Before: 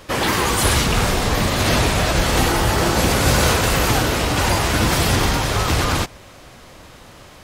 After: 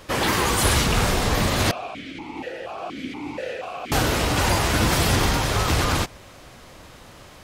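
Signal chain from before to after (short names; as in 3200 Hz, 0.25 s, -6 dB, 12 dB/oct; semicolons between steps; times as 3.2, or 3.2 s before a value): 1.71–3.92 vowel sequencer 4.2 Hz; gain -2.5 dB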